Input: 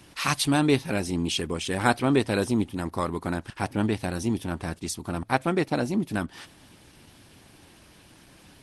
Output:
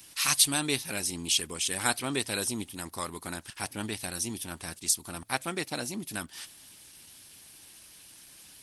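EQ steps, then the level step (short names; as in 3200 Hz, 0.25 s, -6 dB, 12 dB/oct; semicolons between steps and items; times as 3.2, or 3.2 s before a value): pre-emphasis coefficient 0.9; +8.0 dB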